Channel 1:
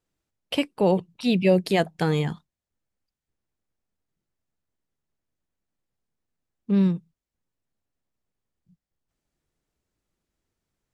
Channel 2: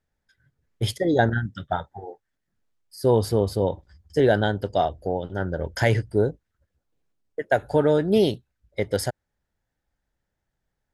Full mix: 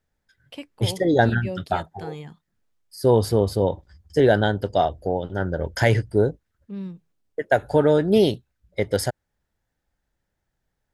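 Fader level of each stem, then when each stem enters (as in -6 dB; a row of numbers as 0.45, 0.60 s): -13.0, +2.0 dB; 0.00, 0.00 s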